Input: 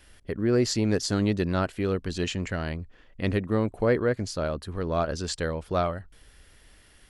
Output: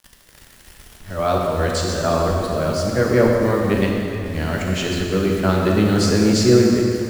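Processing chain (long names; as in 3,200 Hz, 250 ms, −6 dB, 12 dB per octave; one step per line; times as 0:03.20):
played backwards from end to start
bit reduction 8 bits
dense smooth reverb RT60 2.8 s, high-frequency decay 0.85×, DRR −1.5 dB
level +5 dB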